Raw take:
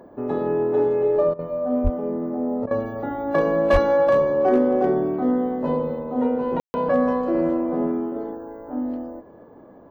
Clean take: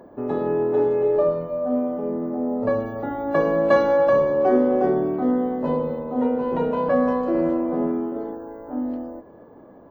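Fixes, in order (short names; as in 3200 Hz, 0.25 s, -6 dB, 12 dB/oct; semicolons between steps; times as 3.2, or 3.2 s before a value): clip repair -10 dBFS; de-plosive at 1.83/3.72; room tone fill 6.6–6.74; interpolate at 1.34/2.66, 48 ms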